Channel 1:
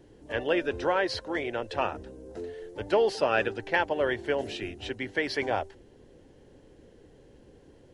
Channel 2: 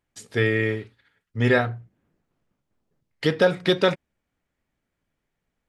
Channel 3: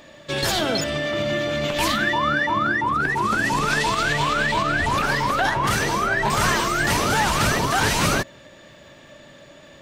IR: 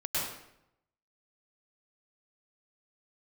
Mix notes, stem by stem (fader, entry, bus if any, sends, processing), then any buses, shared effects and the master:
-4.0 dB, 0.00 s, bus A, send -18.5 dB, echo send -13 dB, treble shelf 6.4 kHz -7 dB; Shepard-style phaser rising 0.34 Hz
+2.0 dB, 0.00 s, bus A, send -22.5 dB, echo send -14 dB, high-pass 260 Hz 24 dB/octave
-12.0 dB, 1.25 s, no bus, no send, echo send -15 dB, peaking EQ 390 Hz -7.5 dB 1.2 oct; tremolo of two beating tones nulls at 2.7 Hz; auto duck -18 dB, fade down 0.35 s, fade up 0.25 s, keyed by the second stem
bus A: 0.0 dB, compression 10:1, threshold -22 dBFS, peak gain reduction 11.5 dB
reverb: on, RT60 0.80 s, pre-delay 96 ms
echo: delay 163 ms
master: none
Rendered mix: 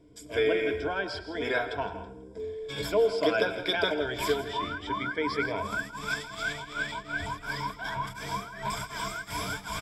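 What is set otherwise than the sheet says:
stem 2 +2.0 dB -> -8.0 dB; stem 3: entry 1.25 s -> 2.40 s; master: extra rippled EQ curve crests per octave 1.7, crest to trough 14 dB

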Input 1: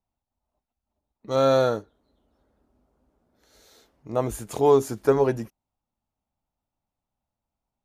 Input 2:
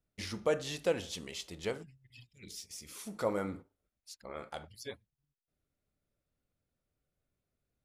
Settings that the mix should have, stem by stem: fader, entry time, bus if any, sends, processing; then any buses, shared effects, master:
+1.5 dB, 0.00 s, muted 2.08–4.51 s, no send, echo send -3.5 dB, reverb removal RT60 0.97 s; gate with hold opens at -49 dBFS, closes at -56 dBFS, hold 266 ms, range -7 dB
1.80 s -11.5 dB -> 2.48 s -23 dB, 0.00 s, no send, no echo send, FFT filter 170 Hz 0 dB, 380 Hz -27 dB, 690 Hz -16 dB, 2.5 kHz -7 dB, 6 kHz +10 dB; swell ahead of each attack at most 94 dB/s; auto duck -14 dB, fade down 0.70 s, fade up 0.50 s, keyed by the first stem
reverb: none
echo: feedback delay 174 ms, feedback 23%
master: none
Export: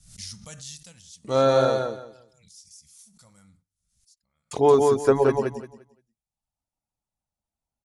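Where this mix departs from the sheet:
stem 2 -11.5 dB -> 0.0 dB; master: extra steep low-pass 11 kHz 96 dB/octave

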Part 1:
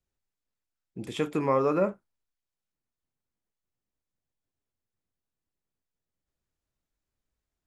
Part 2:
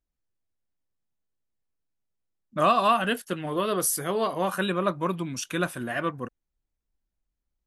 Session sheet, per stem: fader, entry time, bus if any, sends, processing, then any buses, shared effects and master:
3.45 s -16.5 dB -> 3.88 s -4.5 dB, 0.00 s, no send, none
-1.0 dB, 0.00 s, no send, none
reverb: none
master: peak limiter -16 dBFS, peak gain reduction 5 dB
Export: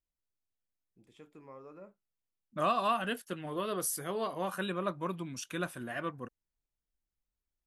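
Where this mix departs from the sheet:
stem 1 -16.5 dB -> -26.0 dB; stem 2 -1.0 dB -> -8.5 dB

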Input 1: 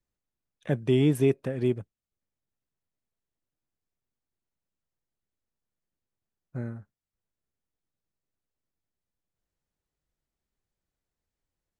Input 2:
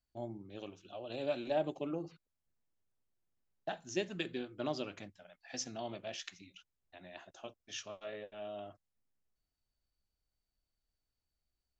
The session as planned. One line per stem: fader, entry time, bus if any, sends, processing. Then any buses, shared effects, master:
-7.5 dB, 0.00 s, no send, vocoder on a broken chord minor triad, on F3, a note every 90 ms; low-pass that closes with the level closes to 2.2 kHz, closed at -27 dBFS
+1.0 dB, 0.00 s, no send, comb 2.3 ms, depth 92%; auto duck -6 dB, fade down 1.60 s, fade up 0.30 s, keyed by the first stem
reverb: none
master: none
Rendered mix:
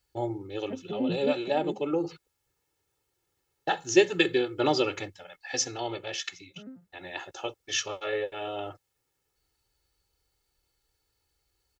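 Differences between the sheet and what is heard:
stem 2 +1.0 dB -> +12.5 dB; master: extra high-pass 110 Hz 6 dB/octave

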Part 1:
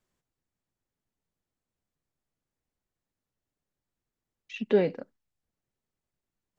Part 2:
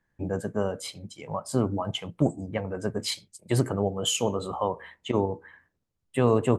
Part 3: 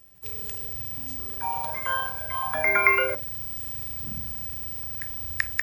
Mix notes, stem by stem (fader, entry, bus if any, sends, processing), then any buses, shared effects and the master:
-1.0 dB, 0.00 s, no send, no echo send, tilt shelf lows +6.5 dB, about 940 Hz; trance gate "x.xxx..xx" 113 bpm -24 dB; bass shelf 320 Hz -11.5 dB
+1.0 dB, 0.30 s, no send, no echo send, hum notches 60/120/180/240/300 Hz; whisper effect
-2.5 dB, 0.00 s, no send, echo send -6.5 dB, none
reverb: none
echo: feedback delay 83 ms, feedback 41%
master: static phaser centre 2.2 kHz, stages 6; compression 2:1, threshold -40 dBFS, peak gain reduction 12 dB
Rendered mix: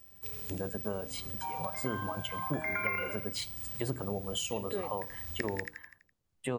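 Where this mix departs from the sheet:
stem 1: missing tilt shelf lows +6.5 dB, about 940 Hz; stem 2: missing whisper effect; master: missing static phaser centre 2.2 kHz, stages 6

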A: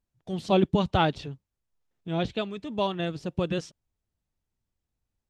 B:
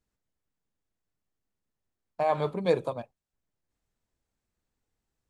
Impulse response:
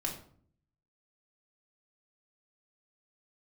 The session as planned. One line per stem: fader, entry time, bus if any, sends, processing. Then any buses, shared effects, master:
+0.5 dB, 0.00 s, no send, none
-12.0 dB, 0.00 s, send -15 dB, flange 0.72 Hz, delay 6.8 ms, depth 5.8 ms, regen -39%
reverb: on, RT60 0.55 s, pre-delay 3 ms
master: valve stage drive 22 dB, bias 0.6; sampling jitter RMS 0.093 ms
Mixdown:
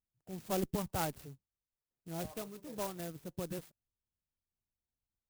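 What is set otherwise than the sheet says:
stem A +0.5 dB -> -9.5 dB; stem B -12.0 dB -> -22.0 dB

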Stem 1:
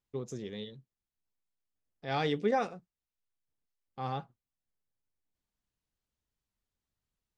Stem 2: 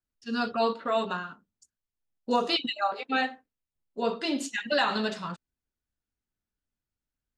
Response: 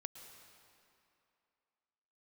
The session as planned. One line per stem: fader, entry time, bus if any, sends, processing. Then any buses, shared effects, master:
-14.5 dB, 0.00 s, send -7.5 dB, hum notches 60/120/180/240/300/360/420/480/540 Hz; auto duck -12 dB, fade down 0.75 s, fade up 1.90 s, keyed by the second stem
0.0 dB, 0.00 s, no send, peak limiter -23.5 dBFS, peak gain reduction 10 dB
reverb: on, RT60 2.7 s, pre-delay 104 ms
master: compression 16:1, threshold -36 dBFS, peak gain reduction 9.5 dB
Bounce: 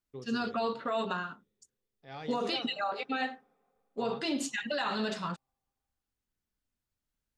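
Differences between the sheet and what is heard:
stem 1 -14.5 dB -> -6.0 dB; master: missing compression 16:1, threshold -36 dBFS, peak gain reduction 9.5 dB

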